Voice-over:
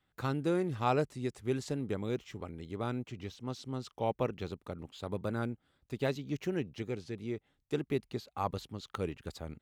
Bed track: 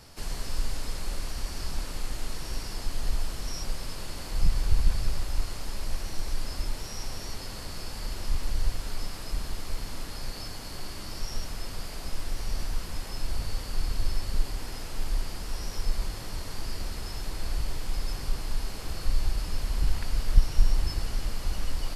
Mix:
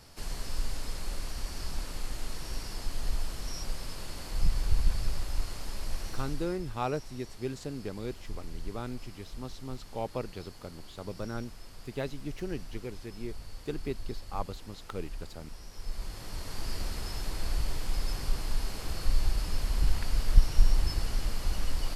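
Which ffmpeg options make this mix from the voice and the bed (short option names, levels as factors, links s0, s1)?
-filter_complex "[0:a]adelay=5950,volume=0.75[s0];[1:a]volume=2.82,afade=t=out:st=6.07:d=0.52:silence=0.334965,afade=t=in:st=15.73:d=1.01:silence=0.251189[s1];[s0][s1]amix=inputs=2:normalize=0"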